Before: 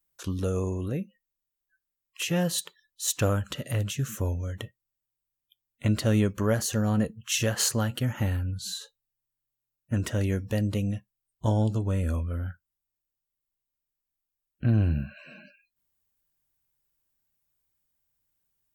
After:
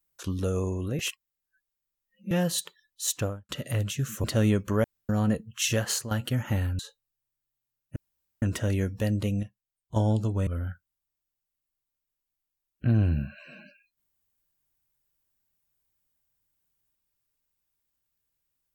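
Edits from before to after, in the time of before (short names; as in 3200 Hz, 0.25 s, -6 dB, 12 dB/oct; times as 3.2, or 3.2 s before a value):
0.99–2.31 reverse
3.06–3.49 studio fade out
4.24–5.94 cut
6.54–6.79 room tone
7.5–7.81 fade out linear, to -12.5 dB
8.49–8.76 cut
9.93 insert room tone 0.46 s
10.94–11.47 gain -7.5 dB
11.98–12.26 cut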